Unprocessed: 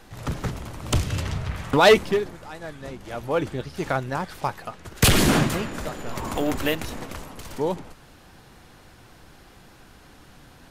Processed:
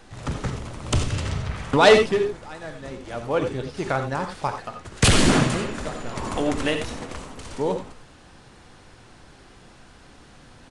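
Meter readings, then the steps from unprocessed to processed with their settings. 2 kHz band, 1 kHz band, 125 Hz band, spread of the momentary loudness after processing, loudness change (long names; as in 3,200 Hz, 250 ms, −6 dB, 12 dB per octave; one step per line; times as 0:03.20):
+1.0 dB, +1.0 dB, +0.5 dB, 19 LU, +1.0 dB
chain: reverb whose tail is shaped and stops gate 110 ms rising, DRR 6.5 dB
downsampling to 22,050 Hz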